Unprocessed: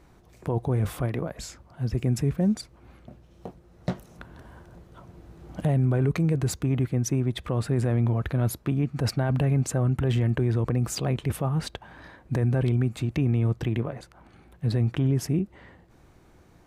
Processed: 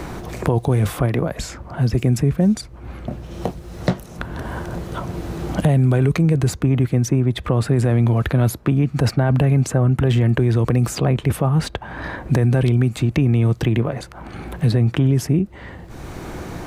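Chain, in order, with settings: three-band squash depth 70%; gain +7.5 dB

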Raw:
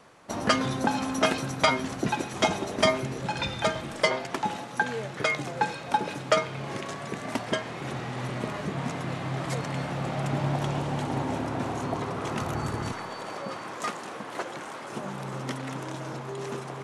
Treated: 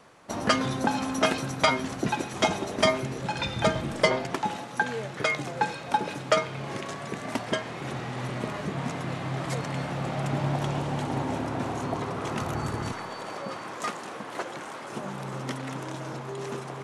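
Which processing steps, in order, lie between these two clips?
3.56–4.35 low shelf 410 Hz +7.5 dB

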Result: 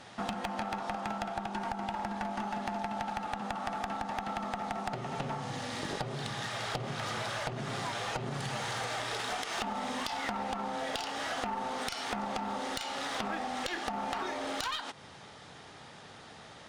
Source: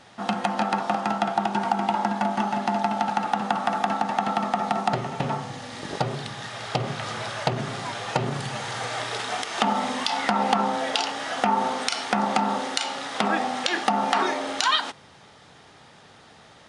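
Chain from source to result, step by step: compressor 8:1, threshold -31 dBFS, peak gain reduction 15.5 dB; one-sided clip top -33 dBFS

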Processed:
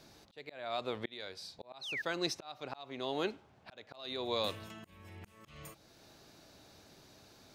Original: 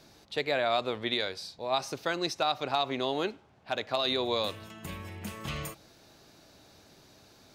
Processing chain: painted sound fall, 1.81–2.02, 1600–4400 Hz -28 dBFS; auto swell 0.588 s; gain -2 dB

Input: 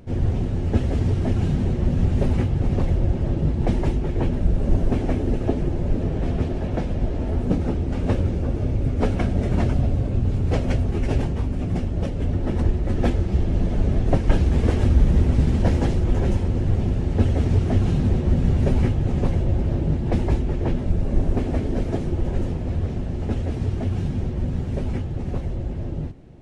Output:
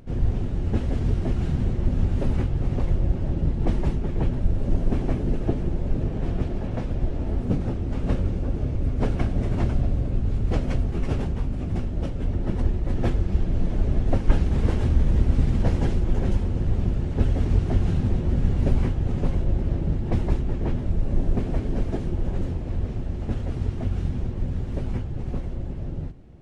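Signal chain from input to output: harmoniser -12 st 0 dB; gain -5 dB

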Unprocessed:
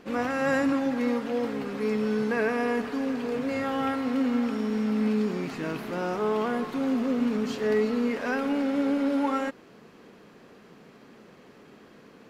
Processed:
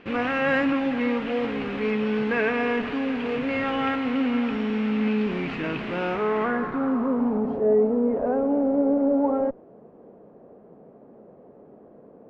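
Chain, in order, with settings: in parallel at -10.5 dB: Schmitt trigger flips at -36 dBFS; on the sum: low-pass sweep 2700 Hz -> 640 Hz, 6.05–7.65

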